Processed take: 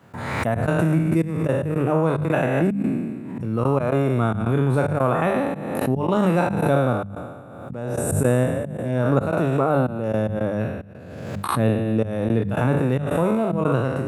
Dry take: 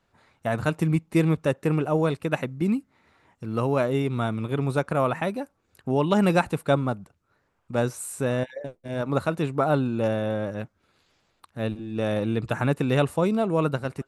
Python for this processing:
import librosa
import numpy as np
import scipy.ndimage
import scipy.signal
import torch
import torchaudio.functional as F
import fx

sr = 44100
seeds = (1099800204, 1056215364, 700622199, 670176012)

y = fx.spec_trails(x, sr, decay_s=1.34)
y = fx.low_shelf(y, sr, hz=210.0, db=7.5)
y = fx.rider(y, sr, range_db=4, speed_s=0.5)
y = fx.step_gate(y, sr, bpm=111, pattern='.xxx.xxxx..x.xxx', floor_db=-24.0, edge_ms=4.5)
y = scipy.signal.sosfilt(scipy.signal.butter(4, 88.0, 'highpass', fs=sr, output='sos'), y)
y = fx.peak_eq(y, sr, hz=4500.0, db=-9.0, octaves=1.7)
y = fx.hum_notches(y, sr, base_hz=50, count=4)
y = fx.pre_swell(y, sr, db_per_s=36.0)